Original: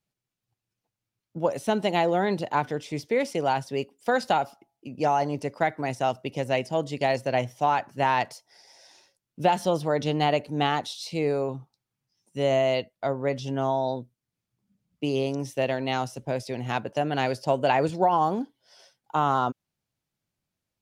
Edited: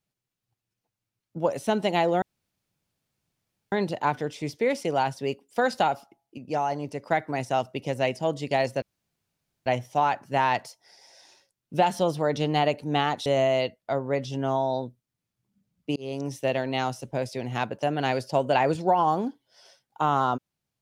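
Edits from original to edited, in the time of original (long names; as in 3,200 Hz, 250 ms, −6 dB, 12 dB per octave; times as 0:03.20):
0:02.22: splice in room tone 1.50 s
0:04.88–0:05.53: clip gain −3.5 dB
0:07.32: splice in room tone 0.84 s
0:10.92–0:12.40: remove
0:15.10–0:15.52: fade in equal-power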